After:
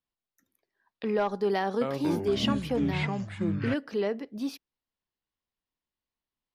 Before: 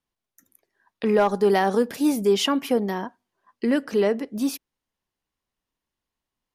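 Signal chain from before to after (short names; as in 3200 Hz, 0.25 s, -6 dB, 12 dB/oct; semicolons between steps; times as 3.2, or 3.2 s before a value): resonant high shelf 6000 Hz -8 dB, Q 1.5; 1.58–3.74 echoes that change speed 0.232 s, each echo -6 st, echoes 3; gain -8 dB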